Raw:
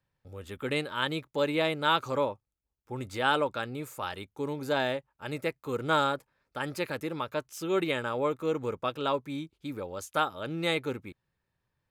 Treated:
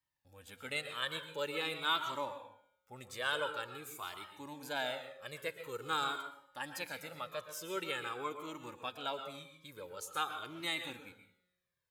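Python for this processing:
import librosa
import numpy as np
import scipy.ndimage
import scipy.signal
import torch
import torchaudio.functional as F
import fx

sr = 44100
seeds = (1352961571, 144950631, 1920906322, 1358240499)

y = fx.tilt_eq(x, sr, slope=2.5)
y = fx.comb_fb(y, sr, f0_hz=180.0, decay_s=1.2, harmonics='all', damping=0.0, mix_pct=50)
y = fx.rev_plate(y, sr, seeds[0], rt60_s=0.57, hf_ratio=0.7, predelay_ms=105, drr_db=8.0)
y = fx.comb_cascade(y, sr, direction='falling', hz=0.47)
y = y * librosa.db_to_amplitude(1.0)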